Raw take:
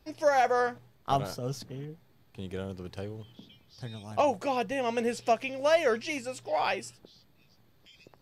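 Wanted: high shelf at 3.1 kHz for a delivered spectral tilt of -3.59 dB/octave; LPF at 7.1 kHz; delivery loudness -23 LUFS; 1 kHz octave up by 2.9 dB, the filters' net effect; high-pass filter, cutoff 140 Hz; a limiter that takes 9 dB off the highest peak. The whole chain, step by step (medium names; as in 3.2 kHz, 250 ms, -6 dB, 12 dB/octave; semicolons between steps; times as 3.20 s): high-pass 140 Hz; low-pass 7.1 kHz; peaking EQ 1 kHz +3.5 dB; treble shelf 3.1 kHz +8 dB; trim +7.5 dB; peak limiter -10.5 dBFS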